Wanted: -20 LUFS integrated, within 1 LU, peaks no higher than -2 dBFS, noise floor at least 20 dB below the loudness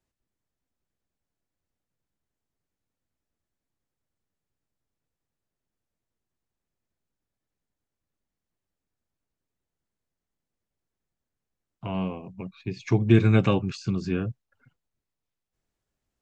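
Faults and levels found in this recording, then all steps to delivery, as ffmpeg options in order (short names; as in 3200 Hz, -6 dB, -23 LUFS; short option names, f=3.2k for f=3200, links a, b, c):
loudness -24.5 LUFS; peak -5.5 dBFS; loudness target -20.0 LUFS
-> -af "volume=4.5dB,alimiter=limit=-2dB:level=0:latency=1"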